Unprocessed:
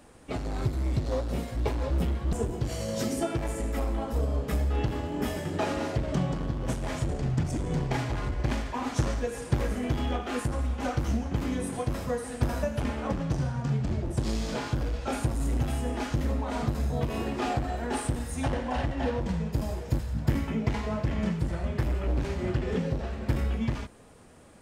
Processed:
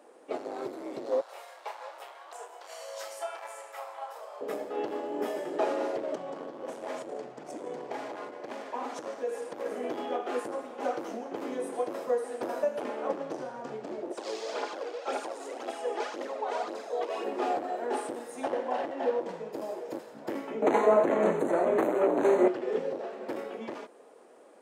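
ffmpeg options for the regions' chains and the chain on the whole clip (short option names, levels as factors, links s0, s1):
-filter_complex "[0:a]asettb=1/sr,asplit=3[s0][s1][s2];[s0]atrim=end=1.214[s3];[s1]atrim=start=1.21:end=4.41,asetpts=PTS-STARTPTS,afade=t=in:d=0.004:c=qsin,afade=t=out:st=3.196:d=0.004:c=qsin,highpass=f=810:w=0.5412,highpass=f=810:w=1.3066,asplit=2[s4][s5];[s5]adelay=31,volume=0.447[s6];[s4][s6]amix=inputs=2:normalize=0,atrim=end_sample=141120[s7];[s2]atrim=start=4.406[s8];[s3][s7]acrossfade=d=0.004:c1=hsin:c2=qsin[s9];[s9][s8]acrossfade=d=0.004:c1=qsin:c2=hsin,asettb=1/sr,asplit=3[s10][s11][s12];[s10]atrim=end=6.144[s13];[s11]atrim=start=6.14:end=9.66,asetpts=PTS-STARTPTS,afade=t=in:d=0.004:c=qsin,afade=t=out:st=3.516:d=0.004:c=qsin,equalizer=f=370:t=o:w=0.32:g=-4.5,acompressor=threshold=0.0398:ratio=5:attack=3.2:release=140:knee=1:detection=peak[s14];[s12]atrim=start=9.656[s15];[s13][s14]acrossfade=d=0.004:c1=hsin:c2=qsin[s16];[s16][s15]acrossfade=d=0.004:c1=qsin:c2=hsin,asettb=1/sr,asplit=3[s17][s18][s19];[s17]atrim=end=14.114[s20];[s18]atrim=start=14.11:end=17.24,asetpts=PTS-STARTPTS,afade=t=in:d=0.004:c=qsin,afade=t=out:st=3.126:d=0.004:c=qsin,highpass=400,lowpass=5900,highshelf=f=3700:g=9,aphaser=in_gain=1:out_gain=1:delay=2.8:decay=0.49:speed=1.9:type=triangular[s21];[s19]atrim=start=17.236[s22];[s20][s21]acrossfade=d=0.004:c1=hsin:c2=qsin[s23];[s23][s22]acrossfade=d=0.004:c1=qsin:c2=hsin,asettb=1/sr,asplit=3[s24][s25][s26];[s24]atrim=end=20.624[s27];[s25]atrim=start=20.62:end=22.48,asetpts=PTS-STARTPTS,afade=t=in:d=0.004:c=qsin,afade=t=out:st=1.856:d=0.004:c=qsin,equalizer=f=3200:w=1.9:g=-10.5,aeval=exprs='0.237*sin(PI/2*2.82*val(0)/0.237)':c=same,asuperstop=centerf=5100:order=12:qfactor=3[s28];[s26]atrim=start=22.476[s29];[s27][s28]acrossfade=d=0.004:c1=hsin:c2=qsin[s30];[s30][s29]acrossfade=d=0.004:c1=qsin:c2=hsin,highpass=f=400:w=0.5412,highpass=f=400:w=1.3066,tiltshelf=f=920:g=8.5"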